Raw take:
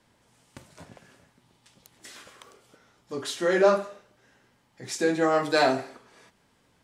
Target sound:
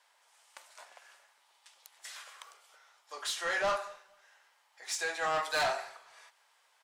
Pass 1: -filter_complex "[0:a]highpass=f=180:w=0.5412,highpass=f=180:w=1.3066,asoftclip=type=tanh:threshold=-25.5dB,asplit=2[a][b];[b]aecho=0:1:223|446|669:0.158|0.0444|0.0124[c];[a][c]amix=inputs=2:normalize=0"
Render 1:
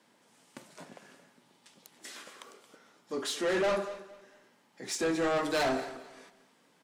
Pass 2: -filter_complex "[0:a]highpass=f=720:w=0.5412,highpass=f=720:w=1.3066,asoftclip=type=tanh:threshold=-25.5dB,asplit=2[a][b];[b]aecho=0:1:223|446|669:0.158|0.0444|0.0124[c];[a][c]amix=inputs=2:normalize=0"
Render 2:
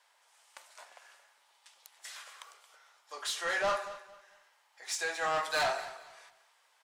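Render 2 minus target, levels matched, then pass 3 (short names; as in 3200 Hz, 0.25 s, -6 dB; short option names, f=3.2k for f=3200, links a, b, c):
echo-to-direct +11 dB
-filter_complex "[0:a]highpass=f=720:w=0.5412,highpass=f=720:w=1.3066,asoftclip=type=tanh:threshold=-25.5dB,asplit=2[a][b];[b]aecho=0:1:223|446:0.0447|0.0125[c];[a][c]amix=inputs=2:normalize=0"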